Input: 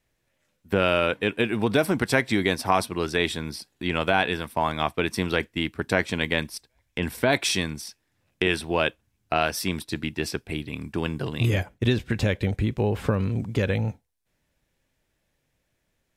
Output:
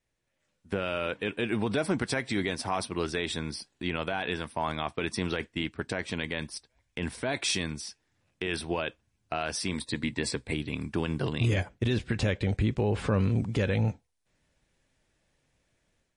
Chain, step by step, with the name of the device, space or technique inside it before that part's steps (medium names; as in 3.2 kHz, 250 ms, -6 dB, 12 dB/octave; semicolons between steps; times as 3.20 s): 9.72–10.53 s: rippled EQ curve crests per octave 1, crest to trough 8 dB; low-bitrate web radio (level rider gain up to 8.5 dB; peak limiter -10 dBFS, peak gain reduction 8.5 dB; trim -7 dB; MP3 40 kbps 32 kHz)